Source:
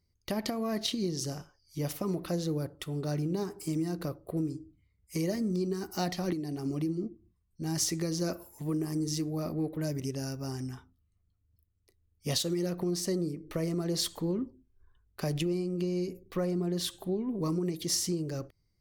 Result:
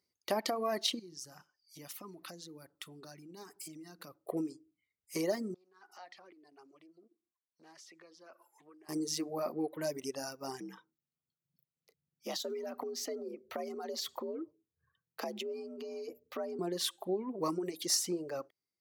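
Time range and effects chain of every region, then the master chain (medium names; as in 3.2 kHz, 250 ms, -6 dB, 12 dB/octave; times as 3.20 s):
0.99–4.26 s: peaking EQ 510 Hz -10 dB 1.3 oct + compression 4:1, threshold -40 dBFS
5.54–8.89 s: compression 4:1, threshold -44 dBFS + band-pass filter 1.4 kHz, Q 0.72 + loudspeaker Doppler distortion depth 0.13 ms
10.60–16.59 s: frequency shift +65 Hz + peaking EQ 9.1 kHz -15 dB 0.3 oct + compression 10:1, threshold -33 dBFS
whole clip: reverb removal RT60 1.2 s; high-pass 330 Hz 12 dB/octave; dynamic bell 850 Hz, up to +6 dB, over -52 dBFS, Q 0.95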